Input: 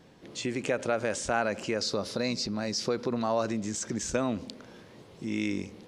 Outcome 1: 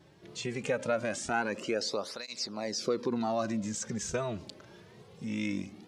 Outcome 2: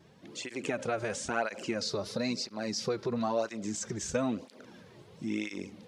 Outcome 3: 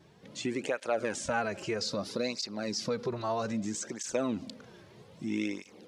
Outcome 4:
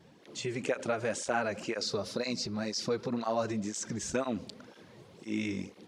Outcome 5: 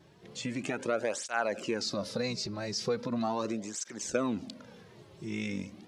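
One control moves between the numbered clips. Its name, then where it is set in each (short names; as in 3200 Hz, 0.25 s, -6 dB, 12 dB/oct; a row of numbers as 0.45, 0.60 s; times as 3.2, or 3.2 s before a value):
tape flanging out of phase, nulls at: 0.22, 1, 0.62, 2, 0.39 Hz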